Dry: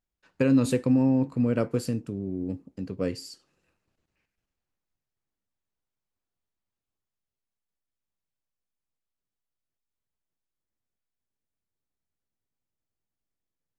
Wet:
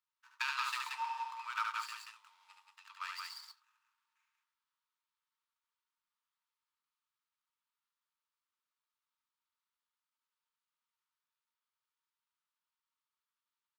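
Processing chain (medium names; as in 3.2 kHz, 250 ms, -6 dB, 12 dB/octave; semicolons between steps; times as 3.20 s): median filter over 15 samples; rippled Chebyshev high-pass 890 Hz, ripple 6 dB; on a send: loudspeakers at several distances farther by 25 m -4 dB, 62 m -4 dB; on the sum: trim +6 dB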